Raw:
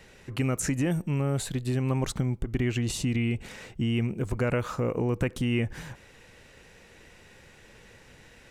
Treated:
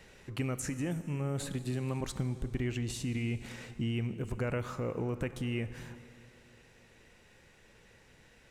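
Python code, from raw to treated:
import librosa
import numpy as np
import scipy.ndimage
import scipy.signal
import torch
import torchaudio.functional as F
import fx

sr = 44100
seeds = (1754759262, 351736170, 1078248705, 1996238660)

y = fx.rider(x, sr, range_db=5, speed_s=0.5)
y = fx.rev_plate(y, sr, seeds[0], rt60_s=2.9, hf_ratio=0.8, predelay_ms=0, drr_db=12.0)
y = fx.band_squash(y, sr, depth_pct=40, at=(1.4, 2.01))
y = y * librosa.db_to_amplitude(-7.0)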